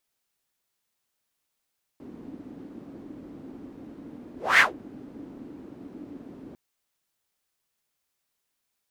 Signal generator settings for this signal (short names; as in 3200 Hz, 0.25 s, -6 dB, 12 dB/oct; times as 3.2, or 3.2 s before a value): whoosh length 4.55 s, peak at 2.59, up 0.23 s, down 0.16 s, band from 280 Hz, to 2000 Hz, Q 4.4, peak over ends 26.5 dB